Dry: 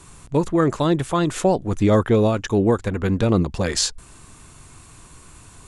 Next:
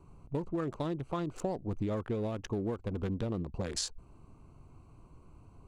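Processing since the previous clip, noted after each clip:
adaptive Wiener filter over 25 samples
downward compressor, threshold −23 dBFS, peak gain reduction 11 dB
level −8 dB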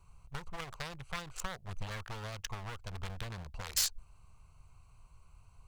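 wavefolder on the positive side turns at −34.5 dBFS
guitar amp tone stack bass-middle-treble 10-0-10
in parallel at −6 dB: dead-zone distortion −52 dBFS
on the sum: level +5.5 dB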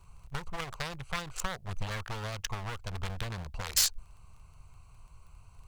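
surface crackle 14 per second −55 dBFS
level +5 dB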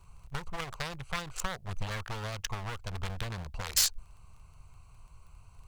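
no processing that can be heard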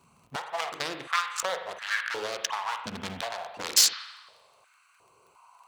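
dynamic equaliser 5,000 Hz, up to +6 dB, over −52 dBFS, Q 0.71
spring reverb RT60 1.1 s, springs 43 ms, chirp 45 ms, DRR 6 dB
high-pass on a step sequencer 2.8 Hz 230–1,600 Hz
level +1.5 dB

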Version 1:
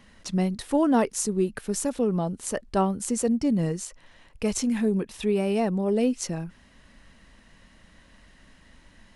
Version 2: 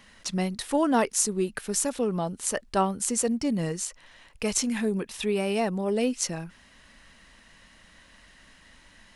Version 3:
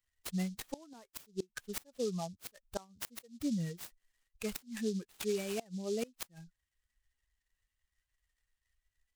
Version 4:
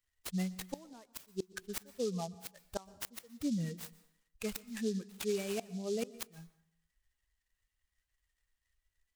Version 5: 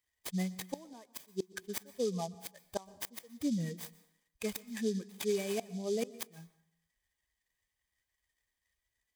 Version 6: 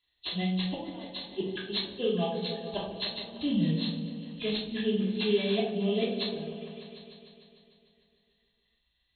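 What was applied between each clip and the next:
tilt shelving filter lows −4.5 dB, about 690 Hz
spectral dynamics exaggerated over time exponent 2; gate with flip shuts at −20 dBFS, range −26 dB; short delay modulated by noise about 5,100 Hz, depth 0.064 ms; level −4.5 dB
dense smooth reverb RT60 0.73 s, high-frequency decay 0.75×, pre-delay 110 ms, DRR 18.5 dB
notch comb filter 1,400 Hz; level +2.5 dB
hearing-aid frequency compression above 2,500 Hz 4 to 1; echo whose low-pass opens from repeat to repeat 150 ms, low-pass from 400 Hz, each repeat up 1 octave, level −6 dB; rectangular room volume 510 cubic metres, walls furnished, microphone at 3.1 metres

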